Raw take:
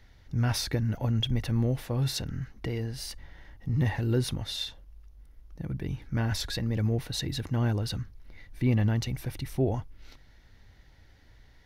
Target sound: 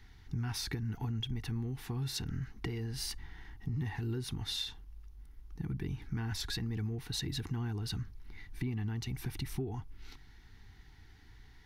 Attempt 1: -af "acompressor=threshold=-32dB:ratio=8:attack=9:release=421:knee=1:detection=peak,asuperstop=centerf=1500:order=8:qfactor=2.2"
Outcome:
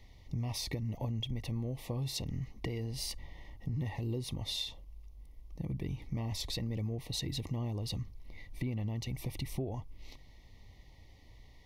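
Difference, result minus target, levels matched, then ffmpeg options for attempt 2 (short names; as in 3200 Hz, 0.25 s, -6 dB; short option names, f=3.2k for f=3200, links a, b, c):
2000 Hz band -4.0 dB
-af "acompressor=threshold=-32dB:ratio=8:attack=9:release=421:knee=1:detection=peak,asuperstop=centerf=570:order=8:qfactor=2.2"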